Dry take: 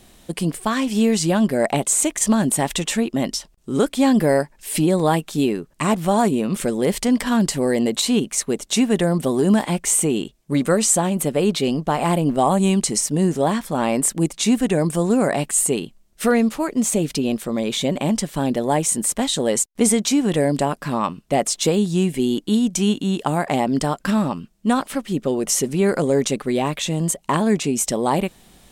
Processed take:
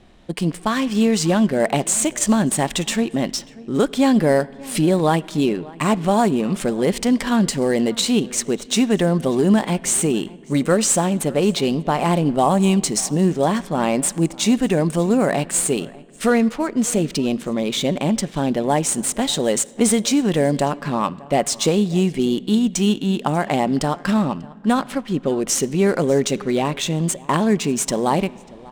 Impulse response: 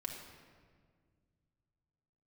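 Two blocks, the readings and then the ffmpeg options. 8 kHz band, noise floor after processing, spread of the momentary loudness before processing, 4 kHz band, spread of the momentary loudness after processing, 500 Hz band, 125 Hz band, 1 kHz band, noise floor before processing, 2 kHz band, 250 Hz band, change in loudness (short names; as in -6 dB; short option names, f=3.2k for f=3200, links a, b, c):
-1.0 dB, -41 dBFS, 5 LU, +1.0 dB, 5 LU, +1.0 dB, +1.0 dB, +1.0 dB, -55 dBFS, +1.0 dB, +0.5 dB, +0.5 dB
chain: -filter_complex "[0:a]aecho=1:1:592:0.0841,asplit=2[a][b];[1:a]atrim=start_sample=2205,asetrate=29988,aresample=44100,highshelf=f=2.3k:g=11[c];[b][c]afir=irnorm=-1:irlink=0,volume=-20dB[d];[a][d]amix=inputs=2:normalize=0,adynamicsmooth=sensitivity=7:basefreq=2.9k"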